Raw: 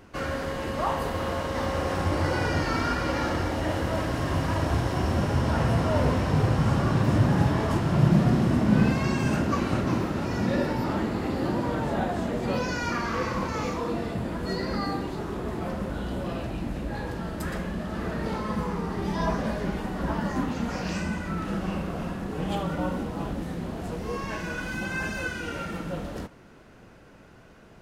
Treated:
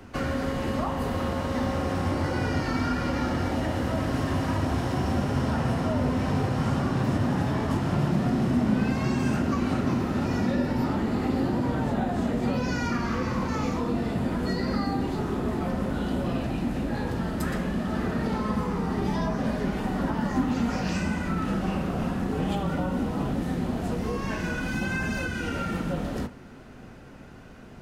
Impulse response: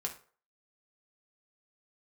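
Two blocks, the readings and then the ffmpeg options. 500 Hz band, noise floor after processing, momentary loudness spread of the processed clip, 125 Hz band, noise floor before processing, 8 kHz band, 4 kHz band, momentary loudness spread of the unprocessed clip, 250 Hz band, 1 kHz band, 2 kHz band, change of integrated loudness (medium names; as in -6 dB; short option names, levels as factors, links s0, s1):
-1.0 dB, -45 dBFS, 4 LU, -1.5 dB, -51 dBFS, -1.0 dB, -1.0 dB, 10 LU, +2.0 dB, -1.0 dB, -1.0 dB, 0.0 dB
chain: -filter_complex "[0:a]acrossover=split=120|270[s0][s1][s2];[s0]acompressor=threshold=0.00891:ratio=4[s3];[s1]acompressor=threshold=0.0158:ratio=4[s4];[s2]acompressor=threshold=0.0224:ratio=4[s5];[s3][s4][s5]amix=inputs=3:normalize=0,asplit=2[s6][s7];[1:a]atrim=start_sample=2205,asetrate=74970,aresample=44100,lowshelf=f=300:g=11[s8];[s7][s8]afir=irnorm=-1:irlink=0,volume=0.841[s9];[s6][s9]amix=inputs=2:normalize=0"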